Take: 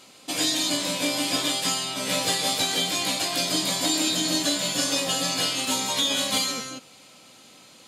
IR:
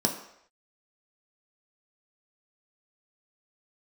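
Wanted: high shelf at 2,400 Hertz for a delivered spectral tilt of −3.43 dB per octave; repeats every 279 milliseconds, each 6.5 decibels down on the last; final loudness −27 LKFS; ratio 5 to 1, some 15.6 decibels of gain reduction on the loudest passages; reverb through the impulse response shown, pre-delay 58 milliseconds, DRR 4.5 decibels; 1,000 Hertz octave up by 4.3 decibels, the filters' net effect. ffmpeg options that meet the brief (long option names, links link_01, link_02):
-filter_complex "[0:a]equalizer=frequency=1000:width_type=o:gain=7,highshelf=frequency=2400:gain=-8,acompressor=threshold=-41dB:ratio=5,aecho=1:1:279|558|837|1116|1395|1674:0.473|0.222|0.105|0.0491|0.0231|0.0109,asplit=2[link_01][link_02];[1:a]atrim=start_sample=2205,adelay=58[link_03];[link_02][link_03]afir=irnorm=-1:irlink=0,volume=-14dB[link_04];[link_01][link_04]amix=inputs=2:normalize=0,volume=11.5dB"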